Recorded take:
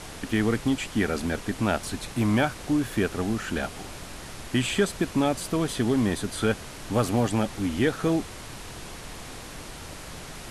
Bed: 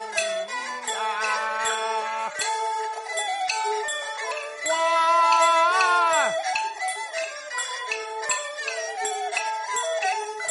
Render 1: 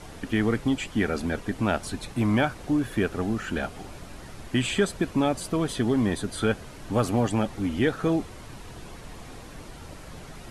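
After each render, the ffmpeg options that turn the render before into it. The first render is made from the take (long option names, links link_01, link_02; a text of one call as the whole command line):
ffmpeg -i in.wav -af "afftdn=noise_reduction=8:noise_floor=-41" out.wav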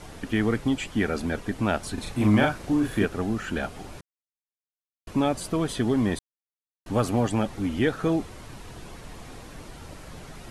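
ffmpeg -i in.wav -filter_complex "[0:a]asettb=1/sr,asplit=3[link_01][link_02][link_03];[link_01]atrim=end=1.944[link_04];[link_02]atrim=start=1.94:end=3.05,asetpts=PTS-STARTPTS,afade=type=in:duration=0.004:curve=qsin,afade=type=out:start_time=1.106:duration=0.004:curve=qsin,asplit=2[link_05][link_06];[link_06]adelay=38,volume=-2.5dB[link_07];[link_05][link_07]amix=inputs=2:normalize=0,atrim=end_sample=48951[link_08];[link_03]atrim=start=3.046[link_09];[link_04][link_08]acrossfade=duration=0.004:curve1=hsin:curve2=qsin[link_10];[link_10][link_09]acrossfade=duration=0.004:curve1=qsin:curve2=hsin,asplit=5[link_11][link_12][link_13][link_14][link_15];[link_11]atrim=end=4.01,asetpts=PTS-STARTPTS,afade=type=out:start_time=4.006:duration=0.004:curve=hsin[link_16];[link_12]atrim=start=4.01:end=5.07,asetpts=PTS-STARTPTS,volume=0[link_17];[link_13]atrim=start=5.07:end=6.19,asetpts=PTS-STARTPTS,afade=type=in:duration=0.004:curve=hsin,afade=type=out:start_time=1.116:duration=0.004:curve=hsin[link_18];[link_14]atrim=start=6.19:end=6.86,asetpts=PTS-STARTPTS,volume=0[link_19];[link_15]atrim=start=6.86,asetpts=PTS-STARTPTS,afade=type=in:duration=0.004:curve=hsin[link_20];[link_16][link_17][link_18][link_19][link_20]concat=n=5:v=0:a=1" out.wav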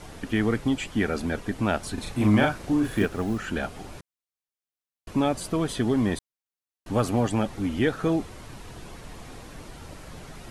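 ffmpeg -i in.wav -filter_complex "[0:a]asettb=1/sr,asplit=3[link_01][link_02][link_03];[link_01]atrim=end=2.844[link_04];[link_02]atrim=start=2.84:end=3.38,asetpts=PTS-STARTPTS,afade=type=in:duration=0.004:curve=qsin,afade=type=out:start_time=0.536:duration=0.004:curve=qsin,acrusher=bits=8:mode=log:mix=0:aa=0.000001[link_05];[link_03]atrim=start=3.376[link_06];[link_04][link_05]acrossfade=duration=0.004:curve1=hsin:curve2=qsin[link_07];[link_07][link_06]acrossfade=duration=0.004:curve1=qsin:curve2=hsin" out.wav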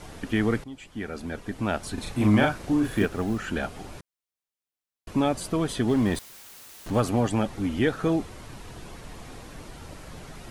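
ffmpeg -i in.wav -filter_complex "[0:a]asettb=1/sr,asplit=3[link_01][link_02][link_03];[link_01]atrim=end=5.884[link_04];[link_02]atrim=start=5.88:end=7,asetpts=PTS-STARTPTS,afade=type=in:duration=0.004:curve=qsin,afade=type=out:start_time=1.116:duration=0.004:curve=qsin,aeval=exprs='val(0)+0.5*0.0141*sgn(val(0))':channel_layout=same[link_05];[link_03]atrim=start=6.996[link_06];[link_04][link_05]acrossfade=duration=0.004:curve1=hsin:curve2=qsin[link_07];[link_07][link_06]acrossfade=duration=0.004:curve1=qsin:curve2=hsin,asplit=2[link_08][link_09];[link_08]atrim=end=0.64,asetpts=PTS-STARTPTS,afade=type=out:start_time=0.636:duration=0.004:curve=hsin:silence=0.11885[link_10];[link_09]atrim=start=0.64,asetpts=PTS-STARTPTS,afade=type=in:duration=1.43:silence=0.11885[link_11];[link_10][link_11]concat=n=2:v=0:a=1" out.wav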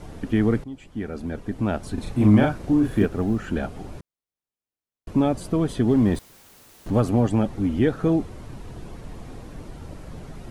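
ffmpeg -i in.wav -af "tiltshelf=frequency=780:gain=5.5" out.wav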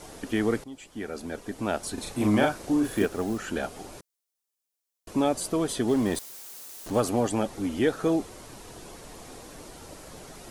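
ffmpeg -i in.wav -af "bass=frequency=250:gain=-13,treble=frequency=4000:gain=10" out.wav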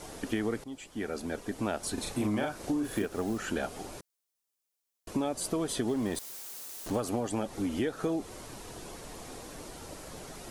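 ffmpeg -i in.wav -af "acompressor=threshold=-27dB:ratio=10" out.wav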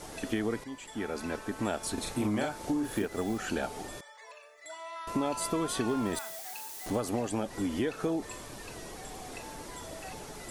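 ffmpeg -i in.wav -i bed.wav -filter_complex "[1:a]volume=-21dB[link_01];[0:a][link_01]amix=inputs=2:normalize=0" out.wav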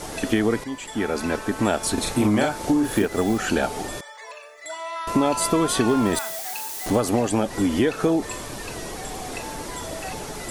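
ffmpeg -i in.wav -af "volume=10.5dB" out.wav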